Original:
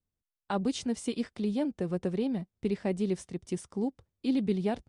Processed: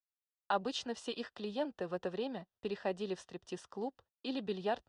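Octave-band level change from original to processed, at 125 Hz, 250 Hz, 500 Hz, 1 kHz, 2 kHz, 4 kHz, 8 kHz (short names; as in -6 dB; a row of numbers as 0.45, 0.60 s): -14.0, -12.0, -4.0, +1.0, 0.0, 0.0, -9.0 dB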